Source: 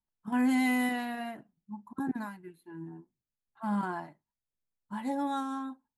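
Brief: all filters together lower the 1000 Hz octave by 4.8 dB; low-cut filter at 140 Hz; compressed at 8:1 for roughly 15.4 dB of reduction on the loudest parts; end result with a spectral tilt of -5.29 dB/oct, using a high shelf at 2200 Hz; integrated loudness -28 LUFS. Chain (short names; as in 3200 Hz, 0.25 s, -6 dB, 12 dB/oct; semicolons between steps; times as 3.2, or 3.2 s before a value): HPF 140 Hz; bell 1000 Hz -7 dB; high shelf 2200 Hz +3 dB; compressor 8:1, threshold -41 dBFS; gain +18 dB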